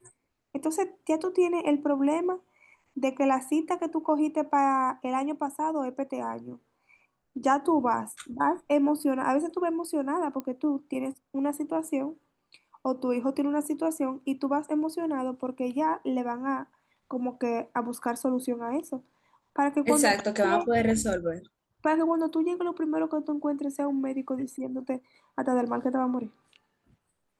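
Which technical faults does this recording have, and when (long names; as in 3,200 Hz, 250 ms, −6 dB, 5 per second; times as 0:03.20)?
0:10.40: click −22 dBFS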